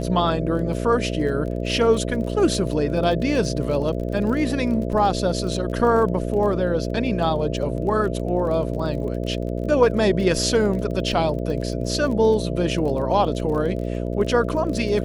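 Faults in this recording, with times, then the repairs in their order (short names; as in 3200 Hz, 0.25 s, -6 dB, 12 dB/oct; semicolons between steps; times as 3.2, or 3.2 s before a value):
buzz 60 Hz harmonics 11 -26 dBFS
crackle 22/s -30 dBFS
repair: de-click; de-hum 60 Hz, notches 11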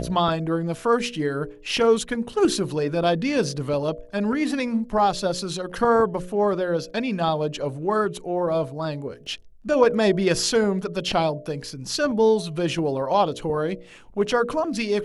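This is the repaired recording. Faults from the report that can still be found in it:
none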